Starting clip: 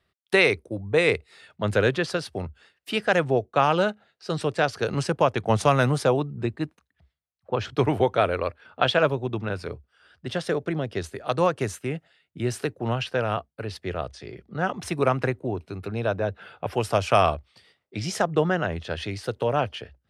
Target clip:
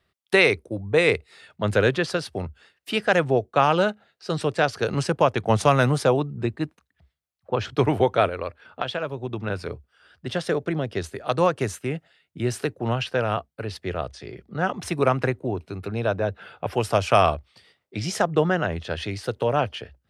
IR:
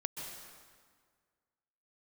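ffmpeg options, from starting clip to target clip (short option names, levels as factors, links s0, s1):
-filter_complex "[0:a]asplit=3[s0][s1][s2];[s0]afade=t=out:st=8.28:d=0.02[s3];[s1]acompressor=threshold=0.0501:ratio=6,afade=t=in:st=8.28:d=0.02,afade=t=out:st=9.46:d=0.02[s4];[s2]afade=t=in:st=9.46:d=0.02[s5];[s3][s4][s5]amix=inputs=3:normalize=0,volume=1.19"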